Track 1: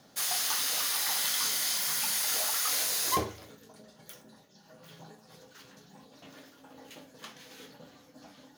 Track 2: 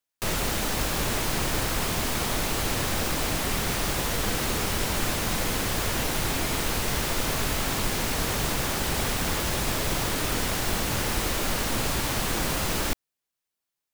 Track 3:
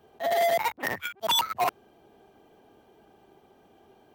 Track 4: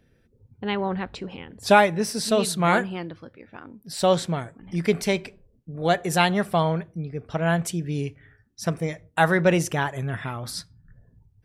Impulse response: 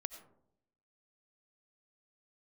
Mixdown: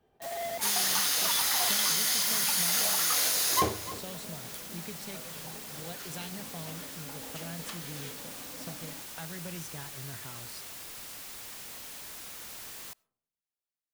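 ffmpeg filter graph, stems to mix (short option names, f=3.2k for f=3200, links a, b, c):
-filter_complex "[0:a]acompressor=mode=upward:threshold=-44dB:ratio=2.5,adelay=450,volume=0dB,asplit=3[a][b][c];[b]volume=-7.5dB[d];[c]volume=-13.5dB[e];[1:a]aeval=exprs='(mod(22.4*val(0)+1,2)-1)/22.4':c=same,volume=-13dB,asplit=2[f][g];[g]volume=-16.5dB[h];[2:a]volume=-12.5dB[i];[3:a]acrossover=split=180|3000[j][k][l];[k]acompressor=threshold=-30dB:ratio=6[m];[j][m][l]amix=inputs=3:normalize=0,volume=-15dB[n];[4:a]atrim=start_sample=2205[o];[d][h]amix=inputs=2:normalize=0[p];[p][o]afir=irnorm=-1:irlink=0[q];[e]aecho=0:1:297:1[r];[a][f][i][n][q][r]amix=inputs=6:normalize=0"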